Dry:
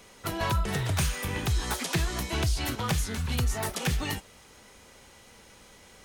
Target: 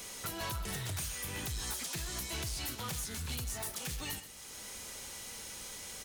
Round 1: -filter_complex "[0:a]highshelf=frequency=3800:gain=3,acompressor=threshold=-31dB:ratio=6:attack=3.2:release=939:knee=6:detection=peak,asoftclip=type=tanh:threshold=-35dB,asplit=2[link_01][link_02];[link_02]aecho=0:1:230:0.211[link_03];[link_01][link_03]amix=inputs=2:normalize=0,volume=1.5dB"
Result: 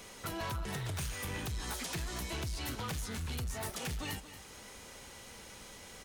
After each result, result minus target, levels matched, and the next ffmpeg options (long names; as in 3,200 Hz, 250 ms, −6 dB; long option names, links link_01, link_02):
echo 101 ms late; 8,000 Hz band −4.0 dB
-filter_complex "[0:a]highshelf=frequency=3800:gain=3,acompressor=threshold=-31dB:ratio=6:attack=3.2:release=939:knee=6:detection=peak,asoftclip=type=tanh:threshold=-35dB,asplit=2[link_01][link_02];[link_02]aecho=0:1:129:0.211[link_03];[link_01][link_03]amix=inputs=2:normalize=0,volume=1.5dB"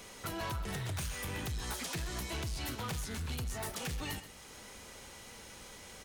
8,000 Hz band −4.0 dB
-filter_complex "[0:a]highshelf=frequency=3800:gain=14.5,acompressor=threshold=-31dB:ratio=6:attack=3.2:release=939:knee=6:detection=peak,asoftclip=type=tanh:threshold=-35dB,asplit=2[link_01][link_02];[link_02]aecho=0:1:129:0.211[link_03];[link_01][link_03]amix=inputs=2:normalize=0,volume=1.5dB"